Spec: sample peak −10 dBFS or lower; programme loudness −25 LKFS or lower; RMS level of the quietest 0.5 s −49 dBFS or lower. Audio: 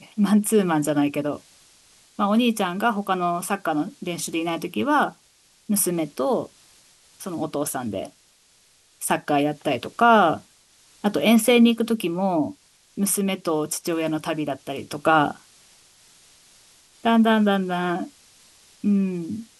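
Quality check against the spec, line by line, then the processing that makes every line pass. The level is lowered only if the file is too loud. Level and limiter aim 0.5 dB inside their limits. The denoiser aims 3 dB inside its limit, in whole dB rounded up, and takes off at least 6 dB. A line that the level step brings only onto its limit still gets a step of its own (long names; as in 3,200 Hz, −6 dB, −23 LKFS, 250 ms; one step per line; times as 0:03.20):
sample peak −6.0 dBFS: out of spec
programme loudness −22.5 LKFS: out of spec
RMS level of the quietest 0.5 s −59 dBFS: in spec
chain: level −3 dB
brickwall limiter −10.5 dBFS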